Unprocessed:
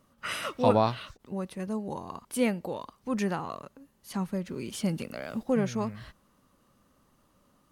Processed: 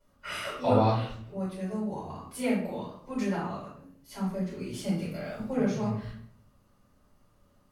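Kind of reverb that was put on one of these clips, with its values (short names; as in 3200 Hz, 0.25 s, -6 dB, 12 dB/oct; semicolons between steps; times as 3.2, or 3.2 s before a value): shoebox room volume 100 m³, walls mixed, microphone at 4.8 m; gain -17 dB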